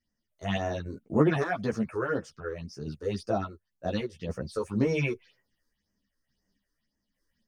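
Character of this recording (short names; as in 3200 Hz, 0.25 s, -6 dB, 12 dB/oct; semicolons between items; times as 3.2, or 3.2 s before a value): phasing stages 6, 1.9 Hz, lowest notch 180–3800 Hz; random-step tremolo; a shimmering, thickened sound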